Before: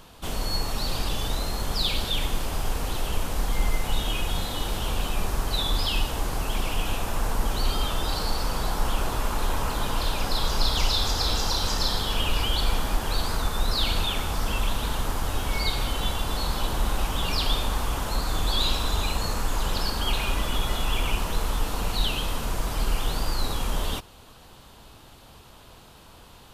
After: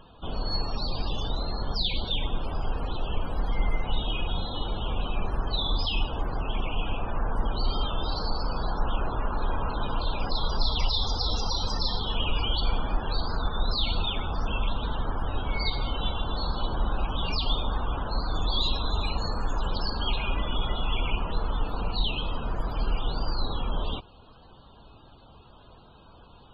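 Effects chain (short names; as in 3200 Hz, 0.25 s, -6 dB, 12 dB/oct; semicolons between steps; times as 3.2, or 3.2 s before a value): loudest bins only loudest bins 64; gain -1.5 dB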